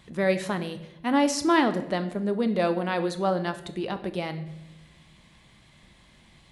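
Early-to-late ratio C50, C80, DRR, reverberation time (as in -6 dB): 13.0 dB, 15.0 dB, 9.0 dB, 0.95 s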